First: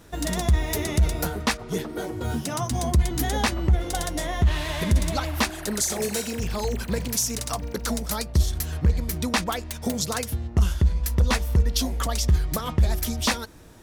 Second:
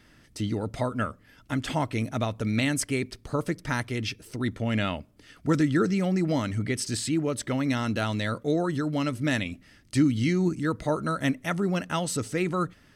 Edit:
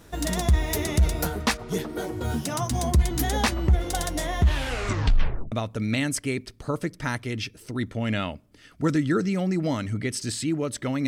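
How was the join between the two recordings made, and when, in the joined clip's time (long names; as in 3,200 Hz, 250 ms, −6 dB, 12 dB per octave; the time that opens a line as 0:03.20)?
first
0:04.50: tape stop 1.02 s
0:05.52: continue with second from 0:02.17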